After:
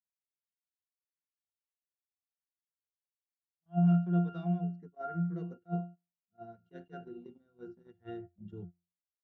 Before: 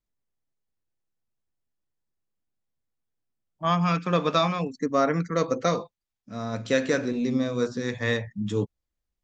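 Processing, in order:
resonances in every octave F, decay 0.38 s
noise gate −48 dBFS, range −17 dB
level that may rise only so fast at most 440 dB per second
level +2 dB

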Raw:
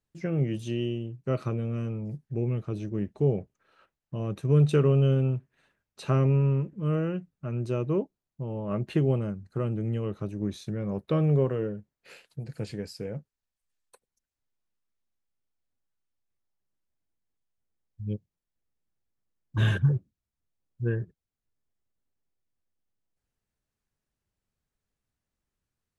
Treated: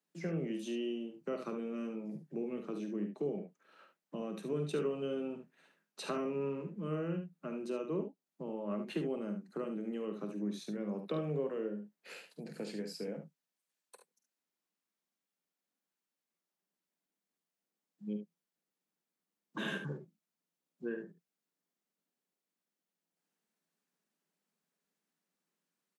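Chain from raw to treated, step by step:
Butterworth high-pass 160 Hz 96 dB per octave
downward compressor 2 to 1, threshold −41 dBFS, peak gain reduction 11.5 dB
on a send: ambience of single reflections 48 ms −10 dB, 72 ms −8.5 dB

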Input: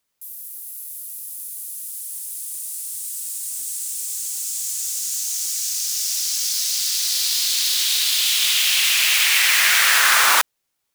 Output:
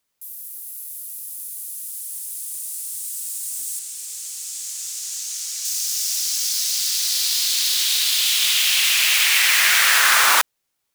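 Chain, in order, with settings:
0:03.79–0:05.65: high-shelf EQ 10,000 Hz −11.5 dB

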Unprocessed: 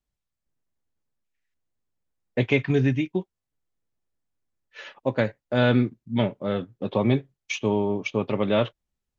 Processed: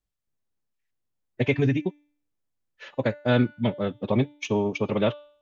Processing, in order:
phase-vocoder stretch with locked phases 0.59×
hum removal 293.8 Hz, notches 29

